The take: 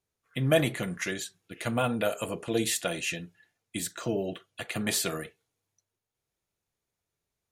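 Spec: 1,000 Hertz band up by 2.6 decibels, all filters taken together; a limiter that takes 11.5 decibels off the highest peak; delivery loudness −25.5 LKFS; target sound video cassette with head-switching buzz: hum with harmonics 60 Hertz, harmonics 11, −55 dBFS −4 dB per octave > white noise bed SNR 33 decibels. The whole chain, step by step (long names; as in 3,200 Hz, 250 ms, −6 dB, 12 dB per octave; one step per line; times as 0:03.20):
parametric band 1,000 Hz +4 dB
brickwall limiter −20.5 dBFS
hum with harmonics 60 Hz, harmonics 11, −55 dBFS −4 dB per octave
white noise bed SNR 33 dB
level +7.5 dB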